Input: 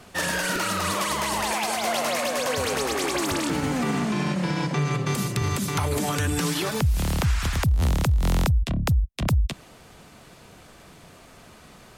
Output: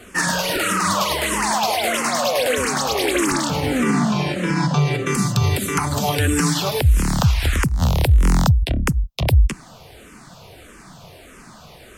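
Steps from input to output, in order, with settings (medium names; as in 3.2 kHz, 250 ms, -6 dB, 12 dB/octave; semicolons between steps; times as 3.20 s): barber-pole phaser -1.6 Hz; trim +8.5 dB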